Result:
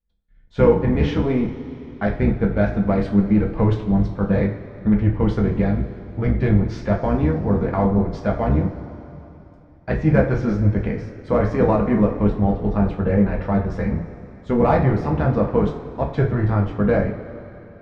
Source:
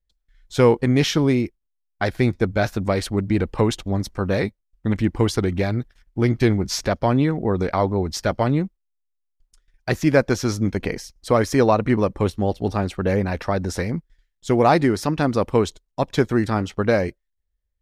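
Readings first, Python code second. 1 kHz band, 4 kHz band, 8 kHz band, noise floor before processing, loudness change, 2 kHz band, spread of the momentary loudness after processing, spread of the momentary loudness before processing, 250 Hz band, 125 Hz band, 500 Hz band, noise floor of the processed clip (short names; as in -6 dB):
-2.0 dB, under -10 dB, under -20 dB, -75 dBFS, +1.0 dB, -3.5 dB, 10 LU, 10 LU, +2.0 dB, +3.0 dB, 0.0 dB, -46 dBFS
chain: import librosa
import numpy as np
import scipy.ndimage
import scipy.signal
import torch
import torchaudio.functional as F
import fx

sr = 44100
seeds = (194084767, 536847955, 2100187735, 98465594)

p1 = fx.octave_divider(x, sr, octaves=1, level_db=0.0)
p2 = scipy.signal.sosfilt(scipy.signal.butter(2, 1900.0, 'lowpass', fs=sr, output='sos'), p1)
p3 = fx.clip_asym(p2, sr, top_db=-13.5, bottom_db=-6.5)
p4 = p2 + (p3 * librosa.db_to_amplitude(-11.5))
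p5 = fx.rev_double_slope(p4, sr, seeds[0], early_s=0.35, late_s=3.3, knee_db=-18, drr_db=-0.5)
y = p5 * librosa.db_to_amplitude(-6.0)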